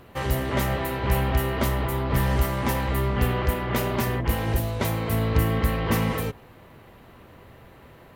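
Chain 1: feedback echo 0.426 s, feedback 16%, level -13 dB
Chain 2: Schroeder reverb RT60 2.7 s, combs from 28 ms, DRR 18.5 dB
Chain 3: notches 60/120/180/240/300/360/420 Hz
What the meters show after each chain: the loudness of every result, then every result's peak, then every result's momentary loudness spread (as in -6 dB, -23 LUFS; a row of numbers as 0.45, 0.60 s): -25.0, -25.0, -25.5 LUFS; -8.0, -8.0, -8.5 dBFS; 4, 3, 3 LU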